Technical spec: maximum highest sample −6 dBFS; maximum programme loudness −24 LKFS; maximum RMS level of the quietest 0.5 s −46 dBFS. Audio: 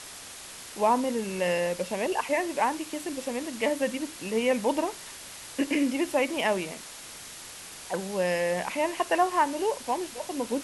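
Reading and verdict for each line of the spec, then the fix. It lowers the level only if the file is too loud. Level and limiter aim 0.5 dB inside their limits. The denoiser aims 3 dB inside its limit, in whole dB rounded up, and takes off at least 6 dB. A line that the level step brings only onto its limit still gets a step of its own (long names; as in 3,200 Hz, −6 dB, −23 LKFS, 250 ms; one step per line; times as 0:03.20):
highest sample −12.0 dBFS: in spec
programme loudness −28.0 LKFS: in spec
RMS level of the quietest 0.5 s −44 dBFS: out of spec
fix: broadband denoise 6 dB, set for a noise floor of −44 dBFS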